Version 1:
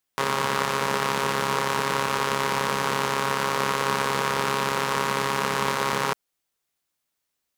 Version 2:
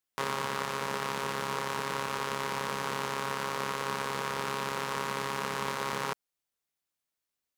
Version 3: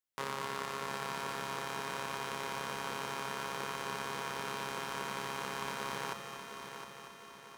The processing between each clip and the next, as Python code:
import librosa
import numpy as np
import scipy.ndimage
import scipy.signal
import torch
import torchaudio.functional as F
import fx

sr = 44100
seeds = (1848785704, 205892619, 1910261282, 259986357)

y1 = fx.rider(x, sr, range_db=10, speed_s=0.5)
y1 = y1 * 10.0 ** (-8.5 / 20.0)
y2 = fx.echo_heads(y1, sr, ms=237, heads='first and third', feedback_pct=65, wet_db=-9)
y2 = y2 * 10.0 ** (-6.0 / 20.0)